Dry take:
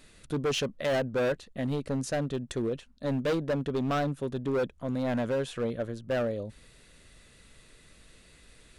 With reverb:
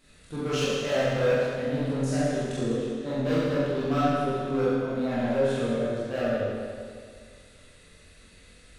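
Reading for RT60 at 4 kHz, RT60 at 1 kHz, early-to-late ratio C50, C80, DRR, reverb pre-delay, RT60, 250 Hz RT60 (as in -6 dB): 2.0 s, 2.1 s, -4.0 dB, -2.0 dB, -10.5 dB, 22 ms, 2.1 s, 2.1 s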